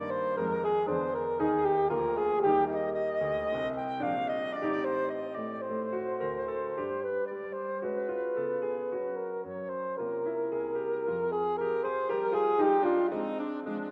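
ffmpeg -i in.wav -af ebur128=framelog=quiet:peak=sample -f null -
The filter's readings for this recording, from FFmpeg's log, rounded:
Integrated loudness:
  I:         -30.7 LUFS
  Threshold: -40.7 LUFS
Loudness range:
  LRA:         5.2 LU
  Threshold: -51.2 LUFS
  LRA low:   -33.8 LUFS
  LRA high:  -28.6 LUFS
Sample peak:
  Peak:      -14.8 dBFS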